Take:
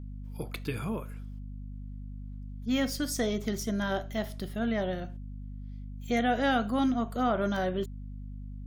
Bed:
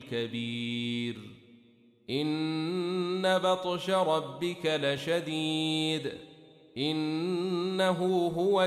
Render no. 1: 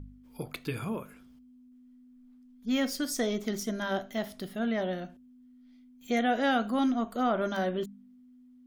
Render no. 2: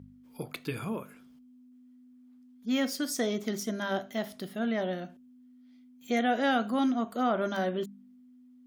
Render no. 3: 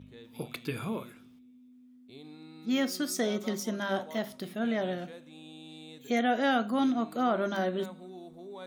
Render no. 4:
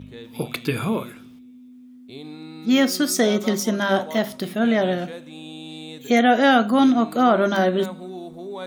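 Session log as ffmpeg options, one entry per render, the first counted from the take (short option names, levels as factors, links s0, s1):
-af "bandreject=f=50:t=h:w=4,bandreject=f=100:t=h:w=4,bandreject=f=150:t=h:w=4,bandreject=f=200:t=h:w=4"
-af "highpass=110"
-filter_complex "[1:a]volume=0.112[s0];[0:a][s0]amix=inputs=2:normalize=0"
-af "volume=3.55"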